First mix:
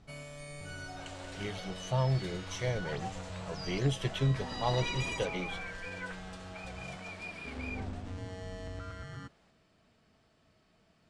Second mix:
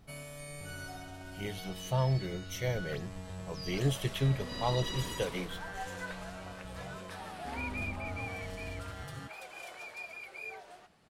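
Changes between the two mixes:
second sound: entry +2.75 s
master: remove low-pass filter 8,300 Hz 24 dB per octave

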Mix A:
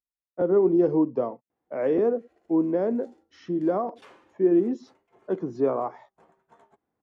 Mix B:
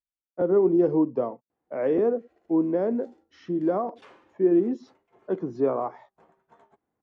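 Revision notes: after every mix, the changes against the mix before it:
master: add high-frequency loss of the air 55 metres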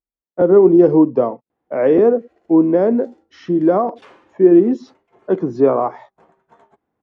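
speech +10.5 dB
background +6.5 dB

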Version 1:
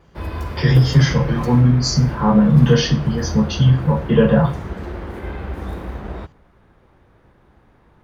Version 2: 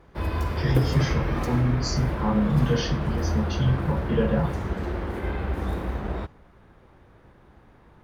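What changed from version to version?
speech −10.0 dB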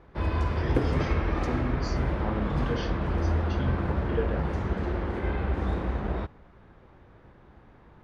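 speech: send −10.5 dB
master: add high-frequency loss of the air 90 metres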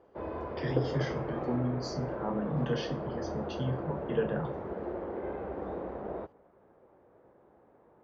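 background: add resonant band-pass 530 Hz, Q 1.5

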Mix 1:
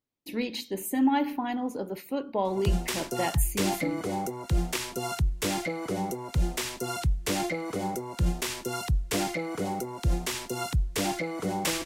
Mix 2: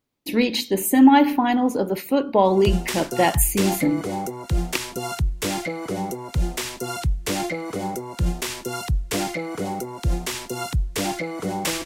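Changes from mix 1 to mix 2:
speech +11.0 dB
background +3.5 dB

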